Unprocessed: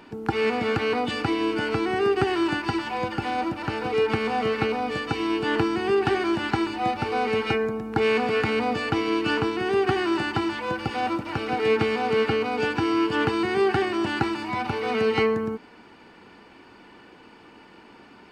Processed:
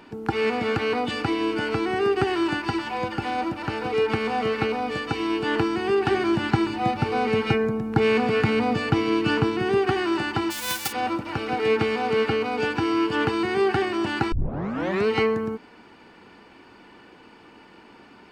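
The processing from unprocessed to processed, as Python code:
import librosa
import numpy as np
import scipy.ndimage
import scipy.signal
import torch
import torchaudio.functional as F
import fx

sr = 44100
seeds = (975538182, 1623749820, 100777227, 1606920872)

y = fx.peak_eq(x, sr, hz=140.0, db=8.5, octaves=1.5, at=(6.11, 9.78))
y = fx.envelope_flatten(y, sr, power=0.1, at=(10.5, 10.91), fade=0.02)
y = fx.edit(y, sr, fx.tape_start(start_s=14.32, length_s=0.75), tone=tone)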